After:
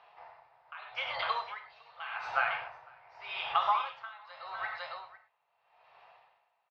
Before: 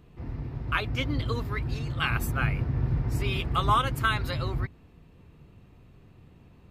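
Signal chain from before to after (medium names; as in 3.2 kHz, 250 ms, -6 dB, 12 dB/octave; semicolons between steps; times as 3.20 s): elliptic band-pass 680–5200 Hz, stop band 40 dB; peaking EQ 860 Hz +7 dB 0.6 oct; compression 10:1, threshold -31 dBFS, peak gain reduction 15.5 dB; distance through air 170 m; on a send: delay 505 ms -9.5 dB; on the sum: gated-style reverb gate 140 ms flat, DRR 3.5 dB; logarithmic tremolo 0.83 Hz, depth 21 dB; trim +7 dB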